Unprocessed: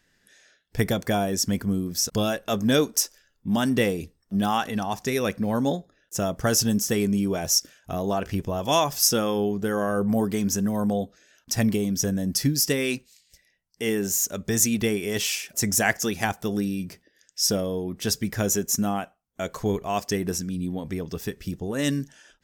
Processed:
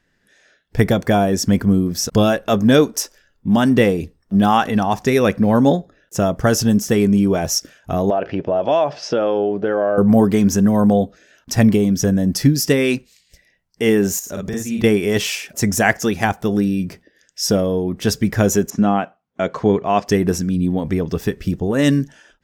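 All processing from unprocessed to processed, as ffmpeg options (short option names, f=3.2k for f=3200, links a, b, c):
-filter_complex "[0:a]asettb=1/sr,asplit=3[a][b][c];[a]atrim=end=8.104[d];[b]atrim=start=8.1:end=9.98,asetpts=PTS-STARTPTS,afade=t=in:d=0.004:c=qsin,afade=t=out:st=1.876:d=0.004:c=qsin,highpass=200,equalizer=f=210:t=q:w=4:g=-7,equalizer=f=610:t=q:w=4:g=8,equalizer=f=1.1k:t=q:w=4:g=-5,equalizer=f=2k:t=q:w=4:g=-3,equalizer=f=3.6k:t=q:w=4:g=-5,lowpass=f=4k:w=0.5412,lowpass=f=4k:w=1.3066,acompressor=threshold=-26dB:ratio=2.5:attack=3.2:release=140:knee=1:detection=peak[e];[c]atrim=start=9.976[f];[d][e]acrossfade=d=0.004:c1=hsin:c2=qsin[g];[g][f]acrossfade=d=0.004:c1=qsin:c2=hsin,asettb=1/sr,asplit=3[h][i][j];[h]atrim=end=14.194[k];[i]atrim=start=14.19:end=14.84,asetpts=PTS-STARTPTS,afade=t=in:d=0.004:c=qsin,afade=t=out:st=0.646:d=0.004:c=qsin,acompressor=threshold=-34dB:ratio=4:attack=3.2:release=140:knee=1:detection=peak,asplit=2[l][m];[m]adelay=48,volume=-2dB[n];[l][n]amix=inputs=2:normalize=0,atrim=end_sample=28665[o];[j]atrim=start=14.836[p];[k][o]acrossfade=d=0.004:c1=hsin:c2=qsin[q];[q][p]acrossfade=d=0.004:c1=qsin:c2=hsin,asettb=1/sr,asplit=3[r][s][t];[r]atrim=end=18.704[u];[s]atrim=start=18.7:end=20.07,asetpts=PTS-STARTPTS,afade=t=in:d=0.004:c=qsin,afade=t=out:st=1.366:d=0.004:c=qsin,deesser=0.55,highpass=130,lowpass=4.4k[v];[t]atrim=start=20.066[w];[u][v]acrossfade=d=0.004:c1=hsin:c2=qsin[x];[x][w]acrossfade=d=0.004:c1=qsin:c2=hsin,dynaudnorm=f=180:g=5:m=8dB,highshelf=f=3.3k:g=-10.5,volume=3dB"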